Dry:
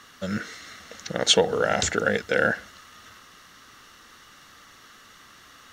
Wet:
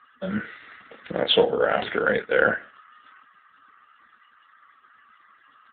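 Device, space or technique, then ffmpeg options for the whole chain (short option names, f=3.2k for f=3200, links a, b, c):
mobile call with aggressive noise cancelling: -filter_complex "[0:a]lowpass=f=6k:w=0.5412,lowpass=f=6k:w=1.3066,asplit=3[a][b][c];[a]afade=t=out:st=1.15:d=0.02[d];[b]equalizer=f=1.8k:t=o:w=0.31:g=-2.5,afade=t=in:st=1.15:d=0.02,afade=t=out:st=2.02:d=0.02[e];[c]afade=t=in:st=2.02:d=0.02[f];[d][e][f]amix=inputs=3:normalize=0,highpass=180,asplit=2[g][h];[h]adelay=28,volume=-6.5dB[i];[g][i]amix=inputs=2:normalize=0,afftdn=nr=20:nf=-46,volume=2dB" -ar 8000 -c:a libopencore_amrnb -b:a 7950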